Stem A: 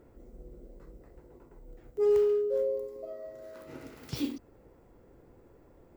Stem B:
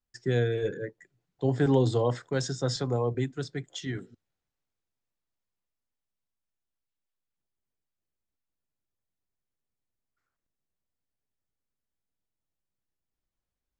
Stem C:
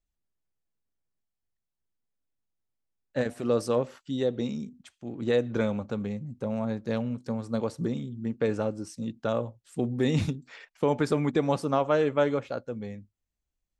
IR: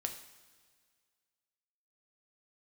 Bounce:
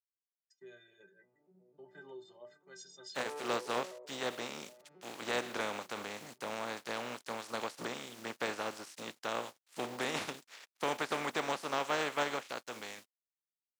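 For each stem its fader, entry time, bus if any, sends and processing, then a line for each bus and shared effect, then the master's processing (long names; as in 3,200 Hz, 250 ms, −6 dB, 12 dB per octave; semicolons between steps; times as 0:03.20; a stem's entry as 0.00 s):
+0.5 dB, 1.20 s, bus A, send −15 dB, vocoder with an arpeggio as carrier minor triad, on B2, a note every 129 ms; bass and treble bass +4 dB, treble −3 dB; tube saturation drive 25 dB, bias 0.65
−4.0 dB, 0.35 s, bus A, no send, downward expander −50 dBFS; notch filter 460 Hz, Q 12; multiband upward and downward expander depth 100%
−3.0 dB, 0.00 s, no bus, no send, compressing power law on the bin magnitudes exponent 0.35; de-essing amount 95%; dead-zone distortion −55.5 dBFS
bus A: 0.0 dB, stiff-string resonator 180 Hz, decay 0.25 s, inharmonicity 0.03; downward compressor 2 to 1, threshold −52 dBFS, peak gain reduction 13.5 dB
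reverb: on, pre-delay 3 ms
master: meter weighting curve A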